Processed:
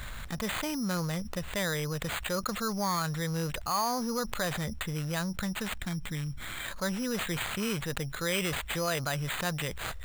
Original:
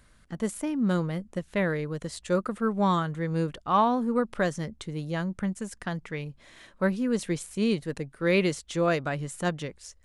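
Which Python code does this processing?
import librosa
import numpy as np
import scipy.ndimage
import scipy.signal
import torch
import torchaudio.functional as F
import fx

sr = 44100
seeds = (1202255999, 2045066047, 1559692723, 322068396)

y = fx.spec_box(x, sr, start_s=5.73, length_s=0.92, low_hz=350.0, high_hz=3100.0, gain_db=-13)
y = np.repeat(y[::8], 8)[:len(y)]
y = fx.peak_eq(y, sr, hz=300.0, db=-11.5, octaves=1.8)
y = fx.env_flatten(y, sr, amount_pct=70)
y = y * librosa.db_to_amplitude(-6.0)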